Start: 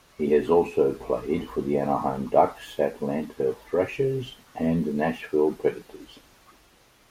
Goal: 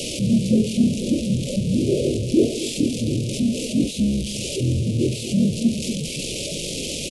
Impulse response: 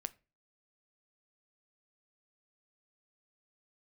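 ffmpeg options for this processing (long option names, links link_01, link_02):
-af "aeval=exprs='val(0)+0.5*0.075*sgn(val(0))':channel_layout=same,asetrate=22696,aresample=44100,atempo=1.94306,asoftclip=type=tanh:threshold=-11dB,asuperstop=centerf=1200:order=12:qfactor=0.62,lowshelf=frequency=100:gain=-9.5,aecho=1:1:236:0.224,volume=4dB"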